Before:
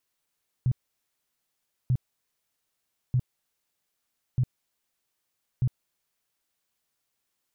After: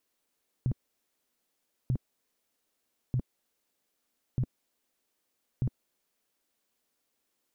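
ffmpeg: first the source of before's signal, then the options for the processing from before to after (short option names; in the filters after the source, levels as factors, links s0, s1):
-f lavfi -i "aevalsrc='0.106*sin(2*PI*126*mod(t,1.24))*lt(mod(t,1.24),7/126)':d=6.2:s=44100"
-af "equalizer=f=125:t=o:w=1:g=-7,equalizer=f=250:t=o:w=1:g=8,equalizer=f=500:t=o:w=1:g=5"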